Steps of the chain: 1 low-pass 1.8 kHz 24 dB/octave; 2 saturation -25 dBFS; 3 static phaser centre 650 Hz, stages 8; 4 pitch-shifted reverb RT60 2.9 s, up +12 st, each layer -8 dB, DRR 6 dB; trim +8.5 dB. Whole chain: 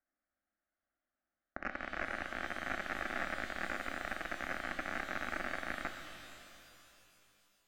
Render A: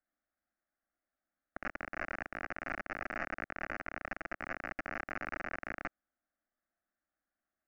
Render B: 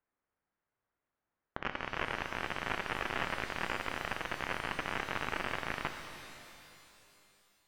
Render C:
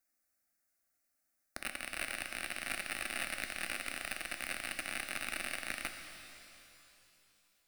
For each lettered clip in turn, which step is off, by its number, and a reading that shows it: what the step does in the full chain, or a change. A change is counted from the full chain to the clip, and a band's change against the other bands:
4, 4 kHz band -10.5 dB; 3, 125 Hz band +4.5 dB; 1, 8 kHz band +18.5 dB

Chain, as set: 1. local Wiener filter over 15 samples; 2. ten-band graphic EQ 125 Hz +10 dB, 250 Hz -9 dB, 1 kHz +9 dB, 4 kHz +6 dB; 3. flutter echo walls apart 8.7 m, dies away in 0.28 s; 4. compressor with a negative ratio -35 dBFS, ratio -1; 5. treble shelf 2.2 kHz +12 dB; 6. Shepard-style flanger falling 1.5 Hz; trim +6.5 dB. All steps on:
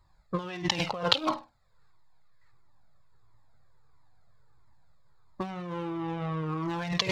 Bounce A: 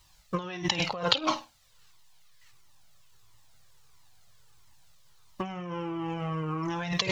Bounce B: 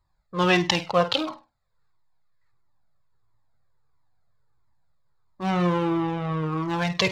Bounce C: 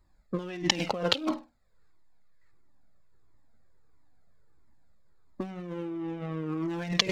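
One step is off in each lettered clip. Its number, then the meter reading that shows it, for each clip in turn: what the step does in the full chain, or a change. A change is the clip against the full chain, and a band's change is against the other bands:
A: 1, 8 kHz band +2.0 dB; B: 4, crest factor change -10.0 dB; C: 2, 1 kHz band -5.0 dB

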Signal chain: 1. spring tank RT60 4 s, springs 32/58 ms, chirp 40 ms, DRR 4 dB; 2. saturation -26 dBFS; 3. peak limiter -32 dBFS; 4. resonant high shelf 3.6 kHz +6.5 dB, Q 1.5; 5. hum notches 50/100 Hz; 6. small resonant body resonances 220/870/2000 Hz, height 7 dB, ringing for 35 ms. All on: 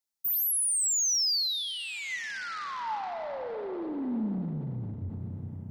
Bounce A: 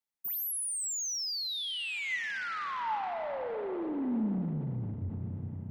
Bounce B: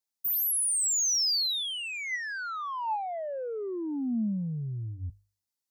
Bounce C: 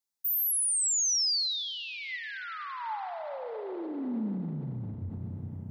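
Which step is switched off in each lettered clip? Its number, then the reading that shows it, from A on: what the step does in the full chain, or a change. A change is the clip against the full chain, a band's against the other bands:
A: 4, 8 kHz band -7.5 dB; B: 1, momentary loudness spread change -2 LU; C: 2, distortion -17 dB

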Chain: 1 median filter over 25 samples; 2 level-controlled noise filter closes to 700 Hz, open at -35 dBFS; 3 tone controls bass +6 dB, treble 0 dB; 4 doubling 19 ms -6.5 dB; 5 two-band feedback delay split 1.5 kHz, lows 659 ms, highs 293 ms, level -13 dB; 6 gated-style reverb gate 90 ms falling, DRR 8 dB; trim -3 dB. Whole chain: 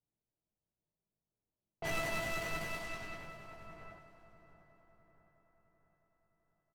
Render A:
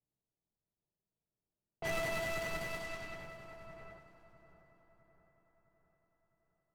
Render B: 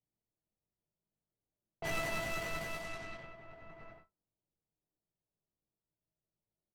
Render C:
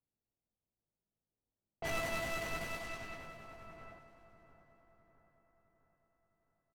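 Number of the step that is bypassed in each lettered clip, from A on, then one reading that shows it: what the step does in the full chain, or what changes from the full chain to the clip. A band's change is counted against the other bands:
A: 4, 500 Hz band +3.5 dB; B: 5, echo-to-direct -6.0 dB to -8.0 dB; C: 6, echo-to-direct -6.0 dB to -11.5 dB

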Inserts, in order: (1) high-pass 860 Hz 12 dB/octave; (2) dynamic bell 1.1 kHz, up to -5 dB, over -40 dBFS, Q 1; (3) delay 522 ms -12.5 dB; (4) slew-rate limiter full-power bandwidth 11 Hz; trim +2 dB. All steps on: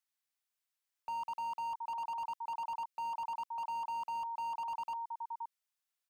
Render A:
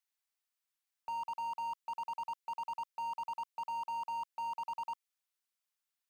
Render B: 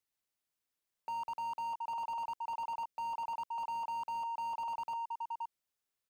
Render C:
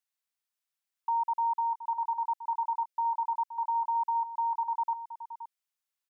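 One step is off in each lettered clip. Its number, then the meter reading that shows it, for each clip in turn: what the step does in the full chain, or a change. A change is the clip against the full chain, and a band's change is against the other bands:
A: 3, momentary loudness spread change -1 LU; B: 1, 500 Hz band +2.5 dB; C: 4, momentary loudness spread change +8 LU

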